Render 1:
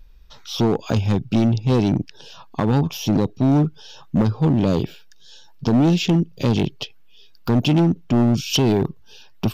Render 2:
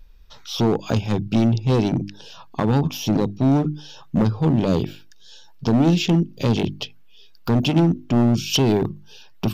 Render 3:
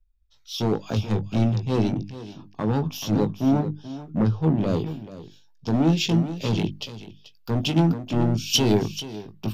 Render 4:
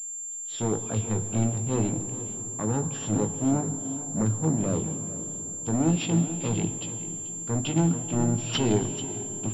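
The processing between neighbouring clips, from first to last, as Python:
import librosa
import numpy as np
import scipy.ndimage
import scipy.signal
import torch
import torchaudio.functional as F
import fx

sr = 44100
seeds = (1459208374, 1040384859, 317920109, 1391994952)

y1 = fx.hum_notches(x, sr, base_hz=50, count=7)
y2 = fx.doubler(y1, sr, ms=19.0, db=-9)
y2 = y2 + 10.0 ** (-9.0 / 20.0) * np.pad(y2, (int(435 * sr / 1000.0), 0))[:len(y2)]
y2 = fx.band_widen(y2, sr, depth_pct=70)
y2 = y2 * 10.0 ** (-4.5 / 20.0)
y3 = fx.rev_plate(y2, sr, seeds[0], rt60_s=4.9, hf_ratio=0.45, predelay_ms=0, drr_db=10.0)
y3 = fx.pwm(y3, sr, carrier_hz=7300.0)
y3 = y3 * 10.0 ** (-4.0 / 20.0)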